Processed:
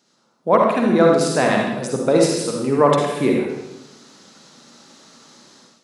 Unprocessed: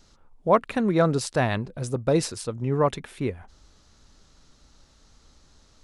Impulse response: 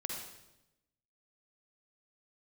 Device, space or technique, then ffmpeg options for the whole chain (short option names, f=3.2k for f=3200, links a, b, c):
far laptop microphone: -filter_complex "[1:a]atrim=start_sample=2205[a];[0:a][a]afir=irnorm=-1:irlink=0,highpass=f=180:w=0.5412,highpass=f=180:w=1.3066,dynaudnorm=f=120:g=5:m=14dB,volume=-1dB"